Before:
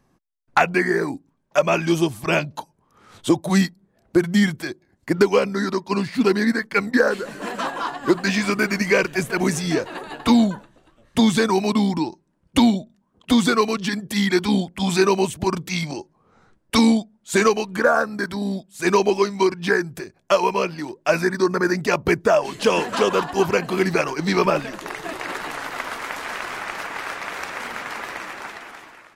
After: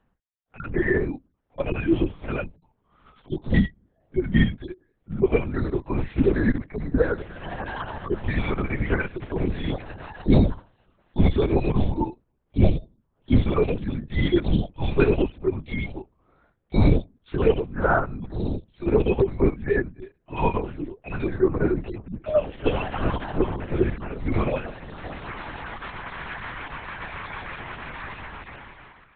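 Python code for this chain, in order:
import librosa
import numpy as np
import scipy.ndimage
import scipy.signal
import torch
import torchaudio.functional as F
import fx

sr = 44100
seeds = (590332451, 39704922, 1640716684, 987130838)

y = fx.hpss_only(x, sr, part='harmonic')
y = scipy.signal.sosfilt(scipy.signal.butter(2, 150.0, 'highpass', fs=sr, output='sos'), y)
y = fx.lpc_vocoder(y, sr, seeds[0], excitation='whisper', order=8)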